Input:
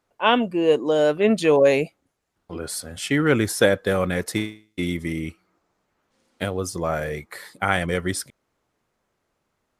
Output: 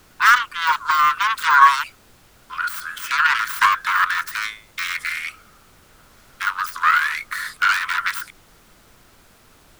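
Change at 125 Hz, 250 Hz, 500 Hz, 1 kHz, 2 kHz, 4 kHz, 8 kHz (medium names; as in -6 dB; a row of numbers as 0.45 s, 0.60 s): under -20 dB, under -25 dB, under -30 dB, +11.5 dB, +10.0 dB, +4.0 dB, -1.0 dB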